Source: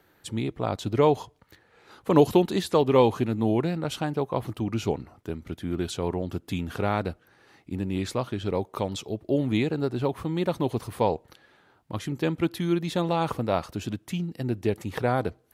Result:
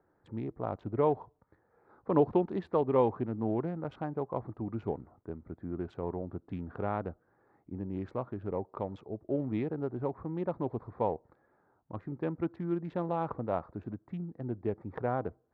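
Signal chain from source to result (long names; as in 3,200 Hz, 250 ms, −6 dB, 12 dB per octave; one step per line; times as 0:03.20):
adaptive Wiener filter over 15 samples
low-pass filter 1,300 Hz 12 dB per octave
low-shelf EQ 450 Hz −4.5 dB
level −4.5 dB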